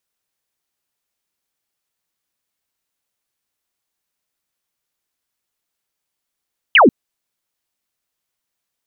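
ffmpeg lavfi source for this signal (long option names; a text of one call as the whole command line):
ffmpeg -f lavfi -i "aevalsrc='0.531*clip(t/0.002,0,1)*clip((0.14-t)/0.002,0,1)*sin(2*PI*3200*0.14/log(200/3200)*(exp(log(200/3200)*t/0.14)-1))':duration=0.14:sample_rate=44100" out.wav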